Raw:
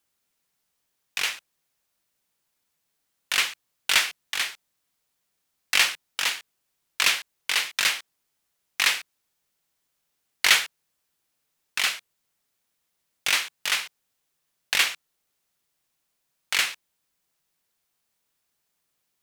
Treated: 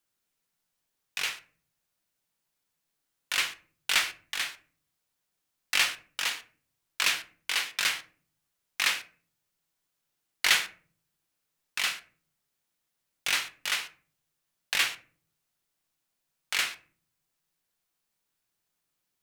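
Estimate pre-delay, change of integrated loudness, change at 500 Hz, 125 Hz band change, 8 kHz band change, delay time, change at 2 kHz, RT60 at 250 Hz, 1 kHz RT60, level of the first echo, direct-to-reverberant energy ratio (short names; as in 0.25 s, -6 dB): 6 ms, -4.5 dB, -4.5 dB, n/a, -5.0 dB, none, -4.5 dB, 0.75 s, 0.35 s, none, 7.5 dB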